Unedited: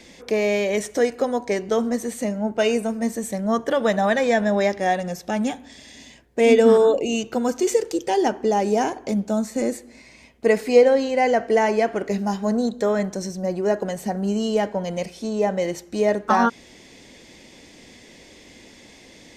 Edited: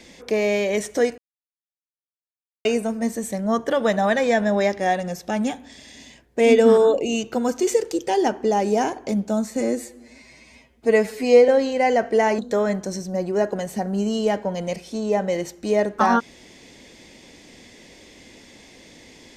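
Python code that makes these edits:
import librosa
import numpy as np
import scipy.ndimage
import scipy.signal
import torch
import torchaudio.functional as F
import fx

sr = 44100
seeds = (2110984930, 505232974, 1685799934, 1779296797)

y = fx.edit(x, sr, fx.silence(start_s=1.18, length_s=1.47),
    fx.stretch_span(start_s=9.61, length_s=1.25, factor=1.5),
    fx.cut(start_s=11.76, length_s=0.92), tone=tone)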